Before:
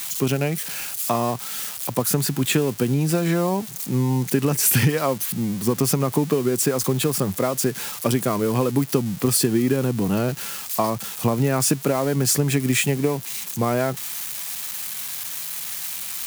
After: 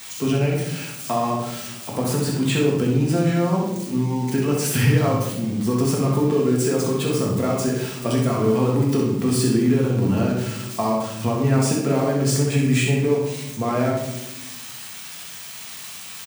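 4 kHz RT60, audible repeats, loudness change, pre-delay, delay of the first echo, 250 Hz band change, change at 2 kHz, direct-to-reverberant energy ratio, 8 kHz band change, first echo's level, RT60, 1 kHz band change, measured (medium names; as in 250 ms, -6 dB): 0.55 s, 1, +1.0 dB, 4 ms, 64 ms, +2.0 dB, -0.5 dB, -3.0 dB, -5.5 dB, -5.5 dB, 0.95 s, +0.5 dB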